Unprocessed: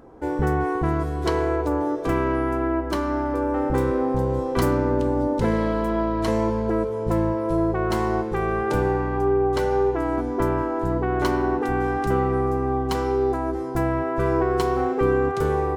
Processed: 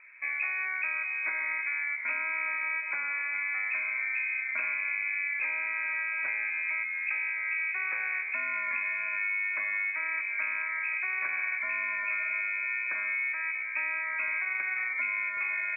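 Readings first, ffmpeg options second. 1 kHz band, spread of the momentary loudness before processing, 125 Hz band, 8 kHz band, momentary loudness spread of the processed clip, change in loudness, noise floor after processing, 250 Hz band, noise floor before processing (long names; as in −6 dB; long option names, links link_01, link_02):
−16.5 dB, 3 LU, below −40 dB, below −35 dB, 1 LU, −6.0 dB, −35 dBFS, below −40 dB, −27 dBFS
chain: -af "acompressor=threshold=-22dB:ratio=6,lowpass=frequency=2200:width_type=q:width=0.5098,lowpass=frequency=2200:width_type=q:width=0.6013,lowpass=frequency=2200:width_type=q:width=0.9,lowpass=frequency=2200:width_type=q:width=2.563,afreqshift=-2600,volume=-6dB"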